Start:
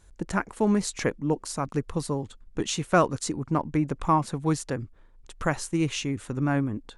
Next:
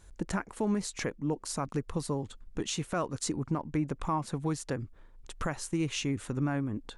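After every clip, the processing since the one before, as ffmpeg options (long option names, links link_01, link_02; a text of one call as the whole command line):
ffmpeg -i in.wav -filter_complex "[0:a]asplit=2[link_01][link_02];[link_02]acompressor=threshold=-32dB:ratio=6,volume=0.5dB[link_03];[link_01][link_03]amix=inputs=2:normalize=0,alimiter=limit=-15dB:level=0:latency=1:release=281,volume=-5.5dB" out.wav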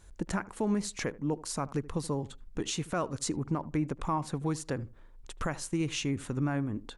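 ffmpeg -i in.wav -filter_complex "[0:a]asplit=2[link_01][link_02];[link_02]adelay=78,lowpass=frequency=1100:poles=1,volume=-18dB,asplit=2[link_03][link_04];[link_04]adelay=78,lowpass=frequency=1100:poles=1,volume=0.21[link_05];[link_01][link_03][link_05]amix=inputs=3:normalize=0" out.wav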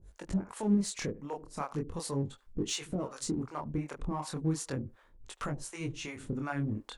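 ffmpeg -i in.wav -filter_complex "[0:a]acrossover=split=520[link_01][link_02];[link_01]aeval=exprs='val(0)*(1-1/2+1/2*cos(2*PI*2.7*n/s))':channel_layout=same[link_03];[link_02]aeval=exprs='val(0)*(1-1/2-1/2*cos(2*PI*2.7*n/s))':channel_layout=same[link_04];[link_03][link_04]amix=inputs=2:normalize=0,flanger=delay=20:depth=7.8:speed=0.38,asplit=2[link_05][link_06];[link_06]asoftclip=type=hard:threshold=-39.5dB,volume=-11dB[link_07];[link_05][link_07]amix=inputs=2:normalize=0,volume=4dB" out.wav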